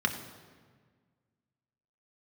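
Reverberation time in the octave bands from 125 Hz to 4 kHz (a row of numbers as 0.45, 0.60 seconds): 2.1, 2.0, 1.7, 1.5, 1.4, 1.2 seconds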